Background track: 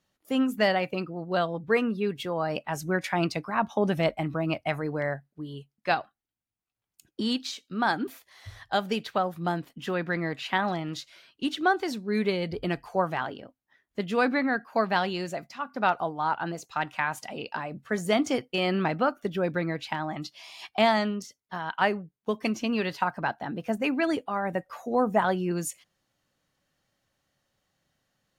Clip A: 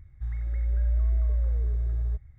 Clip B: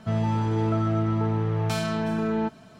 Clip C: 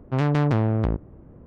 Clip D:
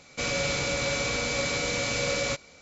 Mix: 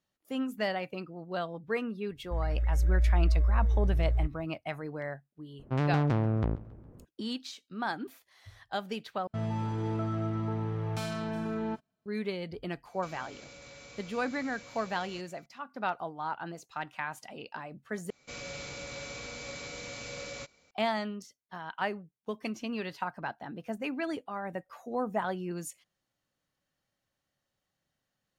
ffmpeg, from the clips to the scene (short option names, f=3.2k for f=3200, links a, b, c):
-filter_complex "[4:a]asplit=2[a][b];[0:a]volume=-8dB[c];[1:a]dynaudnorm=f=130:g=3:m=15dB[d];[3:a]aecho=1:1:137|274|411|548:0.1|0.047|0.0221|0.0104[e];[2:a]agate=range=-26dB:threshold=-40dB:ratio=16:release=100:detection=peak[f];[a]acompressor=threshold=-33dB:ratio=6:attack=3.2:release=140:knee=1:detection=peak[g];[c]asplit=3[h][i][j];[h]atrim=end=9.274[k];[f]atrim=end=2.79,asetpts=PTS-STARTPTS,volume=-8dB[l];[i]atrim=start=12.056:end=18.104[m];[b]atrim=end=2.61,asetpts=PTS-STARTPTS,volume=-13.5dB[n];[j]atrim=start=20.706[o];[d]atrim=end=2.38,asetpts=PTS-STARTPTS,volume=-14.5dB,afade=t=in:d=0.004:c=hsin,afade=t=out:st=2.376:d=0.004:c=hsin,adelay=2100[p];[e]atrim=end=1.46,asetpts=PTS-STARTPTS,volume=-6.5dB,afade=t=in:d=0.004:c=hsin,afade=t=out:st=1.456:d=0.004:c=hsin,adelay=5590[q];[g]atrim=end=2.61,asetpts=PTS-STARTPTS,volume=-14dB,afade=t=in:d=0.004:c=hsin,afade=t=out:st=2.606:d=0.004:c=hsin,adelay=12850[r];[k][l]acrossfade=d=0.004:c1=hsin:c2=hsin[s];[s][m]acrossfade=d=0.004:c1=hsin:c2=hsin[t];[t][n]acrossfade=d=0.004:c1=hsin:c2=hsin[u];[u][o]acrossfade=d=0.004:c1=hsin:c2=hsin[v];[v][p][q][r]amix=inputs=4:normalize=0"